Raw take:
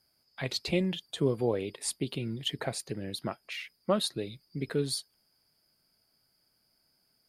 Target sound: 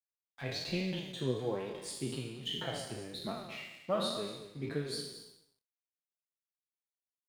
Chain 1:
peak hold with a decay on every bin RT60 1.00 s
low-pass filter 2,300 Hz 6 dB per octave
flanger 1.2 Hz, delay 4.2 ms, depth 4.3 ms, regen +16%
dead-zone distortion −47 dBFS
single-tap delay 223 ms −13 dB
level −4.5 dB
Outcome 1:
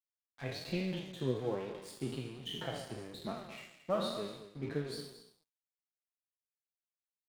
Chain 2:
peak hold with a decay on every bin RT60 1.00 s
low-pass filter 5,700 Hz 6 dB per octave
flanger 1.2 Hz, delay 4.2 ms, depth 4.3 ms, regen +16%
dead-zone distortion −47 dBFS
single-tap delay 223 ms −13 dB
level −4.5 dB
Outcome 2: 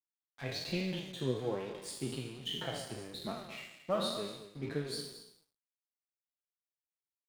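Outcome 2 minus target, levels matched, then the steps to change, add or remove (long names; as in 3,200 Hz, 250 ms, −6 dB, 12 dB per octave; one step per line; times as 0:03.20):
dead-zone distortion: distortion +7 dB
change: dead-zone distortion −54 dBFS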